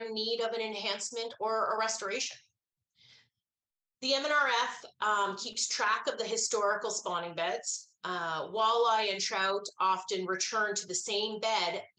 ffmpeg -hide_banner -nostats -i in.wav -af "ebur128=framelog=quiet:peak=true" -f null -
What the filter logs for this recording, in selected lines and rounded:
Integrated loudness:
  I:         -31.3 LUFS
  Threshold: -41.6 LUFS
Loudness range:
  LRA:         4.5 LU
  Threshold: -51.8 LUFS
  LRA low:   -34.8 LUFS
  LRA high:  -30.3 LUFS
True peak:
  Peak:      -15.9 dBFS